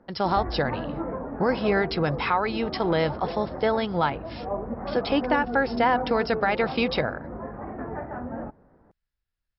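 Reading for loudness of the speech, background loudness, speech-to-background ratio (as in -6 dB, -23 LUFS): -25.5 LUFS, -34.0 LUFS, 8.5 dB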